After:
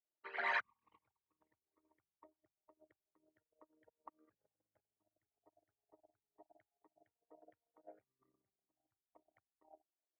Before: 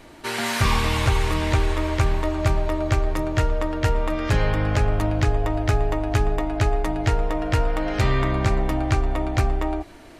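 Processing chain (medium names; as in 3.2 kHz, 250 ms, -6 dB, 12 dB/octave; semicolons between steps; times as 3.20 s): resonances exaggerated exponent 3; band-pass 760–4200 Hz; upward expansion 2.5:1, over -52 dBFS; trim -7 dB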